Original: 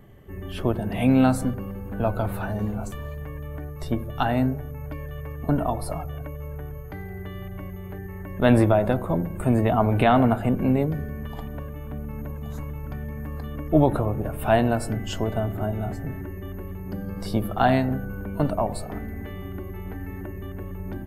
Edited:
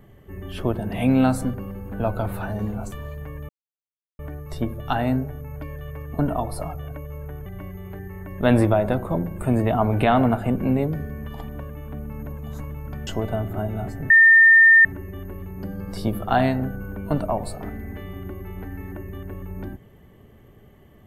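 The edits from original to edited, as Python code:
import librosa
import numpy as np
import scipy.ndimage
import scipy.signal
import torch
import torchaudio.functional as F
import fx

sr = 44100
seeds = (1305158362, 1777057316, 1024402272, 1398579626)

y = fx.edit(x, sr, fx.insert_silence(at_s=3.49, length_s=0.7),
    fx.cut(start_s=6.76, length_s=0.69),
    fx.cut(start_s=13.06, length_s=2.05),
    fx.insert_tone(at_s=16.14, length_s=0.75, hz=1810.0, db=-8.5), tone=tone)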